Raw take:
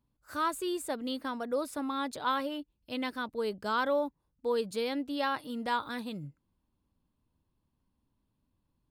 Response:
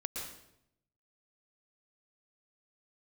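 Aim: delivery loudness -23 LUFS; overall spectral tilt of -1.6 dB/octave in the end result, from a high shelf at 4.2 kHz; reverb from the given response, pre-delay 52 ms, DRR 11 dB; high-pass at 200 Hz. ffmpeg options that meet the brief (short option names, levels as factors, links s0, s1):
-filter_complex "[0:a]highpass=200,highshelf=f=4200:g=-3,asplit=2[s0][s1];[1:a]atrim=start_sample=2205,adelay=52[s2];[s1][s2]afir=irnorm=-1:irlink=0,volume=0.251[s3];[s0][s3]amix=inputs=2:normalize=0,volume=3.35"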